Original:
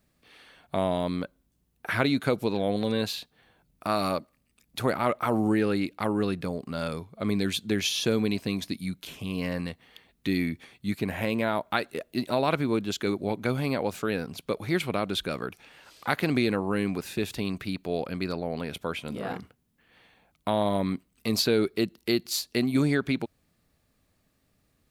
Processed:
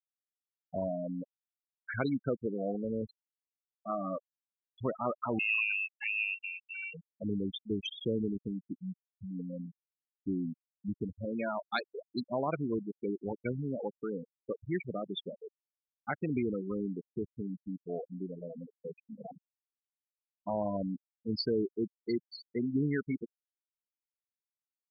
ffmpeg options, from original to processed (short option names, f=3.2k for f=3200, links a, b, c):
-filter_complex "[0:a]asettb=1/sr,asplit=3[a][b][c];[a]atrim=end=5.394[d];[b]atrim=start=5.39:end=6.94,asetpts=PTS-STARTPTS,afade=t=in:d=0.004:c=qsin,afade=t=out:st=1.546:d=0.004:c=qsin,lowpass=f=2.5k:t=q:w=0.5098,lowpass=f=2.5k:t=q:w=0.6013,lowpass=f=2.5k:t=q:w=0.9,lowpass=f=2.5k:t=q:w=2.563,afreqshift=-2900[e];[c]atrim=start=6.936[f];[d][e]acrossfade=d=0.004:c1=hsin:c2=qsin[g];[g][f]acrossfade=d=0.004:c1=qsin:c2=hsin,asettb=1/sr,asplit=3[h][i][j];[h]atrim=end=11.354[k];[i]atrim=start=11.35:end=12.2,asetpts=PTS-STARTPTS,afade=t=in:d=0.004:c=qsin,afade=t=out:st=0.846:d=0.004:c=qsin,highshelf=f=2.9k:g=11[l];[j]atrim=start=12.196[m];[k][l]acrossfade=d=0.004:c1=hsin:c2=qsin[n];[n][m]acrossfade=d=0.004:c1=qsin:c2=hsin,afftfilt=real='re*gte(hypot(re,im),0.141)':imag='im*gte(hypot(re,im),0.141)':win_size=1024:overlap=0.75,volume=-6.5dB"